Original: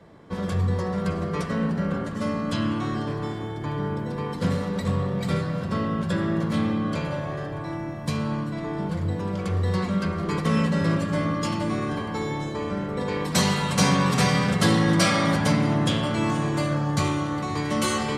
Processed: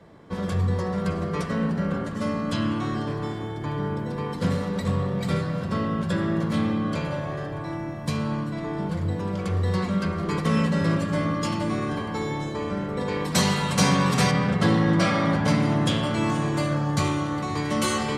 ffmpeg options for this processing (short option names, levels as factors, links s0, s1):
-filter_complex "[0:a]asettb=1/sr,asplit=3[s0][s1][s2];[s0]atrim=end=14.314[s3];[s1]atrim=start=14.31:end=15.48,asetpts=PTS-STARTPTS,afade=t=in:d=0.004:c=qsin,afade=t=out:st=1.166:d=0.004:c=qsin,aemphasis=mode=reproduction:type=75kf[s4];[s2]atrim=start=15.476[s5];[s3][s4]acrossfade=d=0.004:c1=hsin:c2=qsin[s6];[s6][s5]acrossfade=d=0.004:c1=qsin:c2=hsin"